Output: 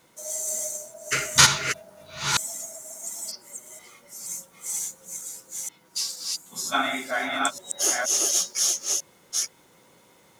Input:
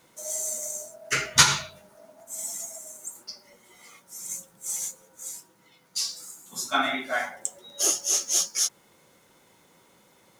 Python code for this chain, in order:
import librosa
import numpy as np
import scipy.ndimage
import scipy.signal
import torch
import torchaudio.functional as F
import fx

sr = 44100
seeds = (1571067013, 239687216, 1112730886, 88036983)

y = fx.reverse_delay(x, sr, ms=474, wet_db=-1.5)